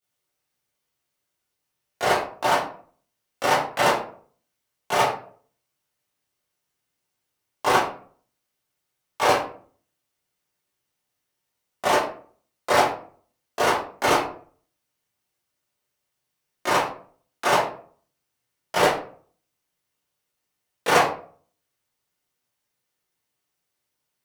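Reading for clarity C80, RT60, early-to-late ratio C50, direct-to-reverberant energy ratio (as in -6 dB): 9.5 dB, 0.50 s, 4.5 dB, -12.5 dB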